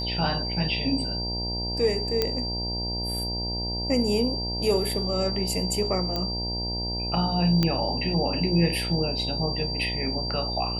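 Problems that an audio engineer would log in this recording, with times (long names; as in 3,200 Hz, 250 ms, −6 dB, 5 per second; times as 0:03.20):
mains buzz 60 Hz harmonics 16 −32 dBFS
whistle 4,700 Hz −30 dBFS
0:02.22: click −9 dBFS
0:06.16: click −15 dBFS
0:07.63: click −10 dBFS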